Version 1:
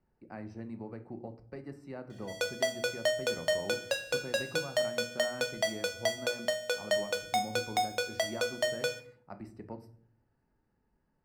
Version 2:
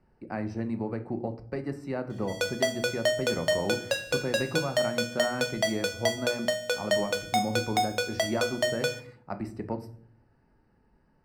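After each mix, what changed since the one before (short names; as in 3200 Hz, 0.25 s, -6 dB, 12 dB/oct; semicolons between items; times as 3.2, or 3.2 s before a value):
speech +10.5 dB; background +3.5 dB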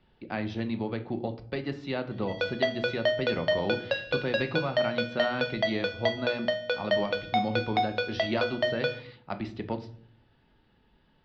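speech: remove running mean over 13 samples; master: add steep low-pass 4200 Hz 36 dB/oct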